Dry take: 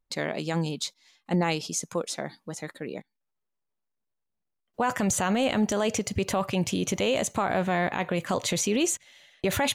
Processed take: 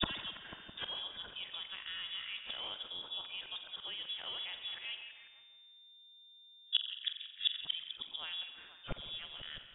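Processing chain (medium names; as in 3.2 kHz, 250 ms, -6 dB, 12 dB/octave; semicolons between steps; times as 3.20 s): reverse the whole clip; level-controlled noise filter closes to 470 Hz, open at -21 dBFS; in parallel at +0.5 dB: compression, threshold -34 dBFS, peak gain reduction 13 dB; on the sum: inverted gate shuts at -24 dBFS, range -27 dB; on a send: repeats whose band climbs or falls 164 ms, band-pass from 950 Hz, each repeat 0.7 oct, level -7 dB; on the sum: spring tank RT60 1.3 s, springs 44 ms, chirp 65 ms, DRR 7.5 dB; frequency inversion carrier 3.6 kHz; trim +6.5 dB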